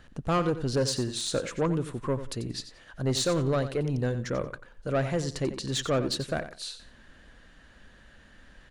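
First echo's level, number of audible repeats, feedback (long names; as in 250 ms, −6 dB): −12.0 dB, 2, 21%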